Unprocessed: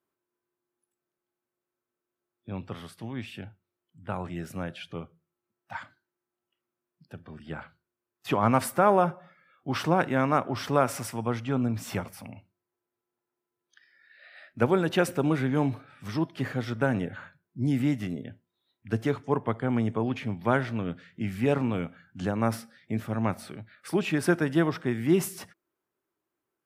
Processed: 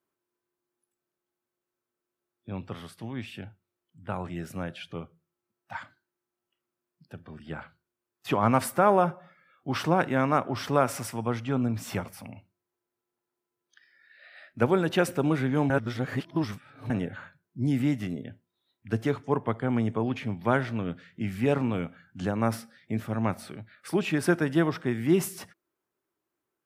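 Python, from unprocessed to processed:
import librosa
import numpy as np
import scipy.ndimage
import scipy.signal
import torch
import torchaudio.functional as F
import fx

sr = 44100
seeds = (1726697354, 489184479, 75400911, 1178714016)

y = fx.edit(x, sr, fx.reverse_span(start_s=15.7, length_s=1.2), tone=tone)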